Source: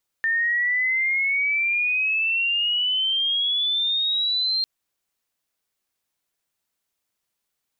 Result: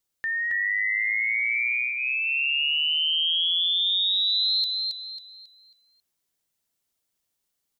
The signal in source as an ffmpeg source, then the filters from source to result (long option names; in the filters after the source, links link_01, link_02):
-f lavfi -i "aevalsrc='pow(10,(-19-1*t/4.4)/20)*sin(2*PI*1800*4.4/log(4200/1800)*(exp(log(4200/1800)*t/4.4)-1))':duration=4.4:sample_rate=44100"
-af "equalizer=frequency=1300:width_type=o:width=2.7:gain=-5.5,bandreject=frequency=2500:width=25,aecho=1:1:272|544|816|1088|1360:0.668|0.234|0.0819|0.0287|0.01"